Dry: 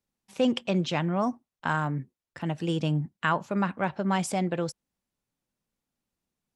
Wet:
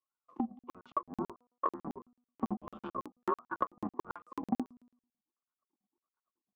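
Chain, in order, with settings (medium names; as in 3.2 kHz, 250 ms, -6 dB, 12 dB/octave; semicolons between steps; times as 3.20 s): octave divider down 1 oct, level +4 dB; wah-wah 1.5 Hz 470–1200 Hz, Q 15; doubling 21 ms -11 dB; ring modulator 270 Hz; bass shelf 190 Hz -7.5 dB; de-hum 244 Hz, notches 5; transient shaper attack +8 dB, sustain -6 dB; small resonant body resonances 230/1100 Hz, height 17 dB, ringing for 25 ms; compression 12:1, threshold -37 dBFS, peak gain reduction 24 dB; peaking EQ 340 Hz +6 dB 0.2 oct; level rider gain up to 8 dB; crackling interface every 0.11 s, samples 2048, zero, from 0.59 s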